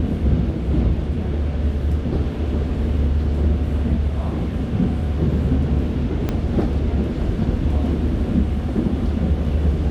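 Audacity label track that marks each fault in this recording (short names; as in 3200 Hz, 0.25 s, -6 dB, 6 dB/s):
6.290000	6.290000	pop -10 dBFS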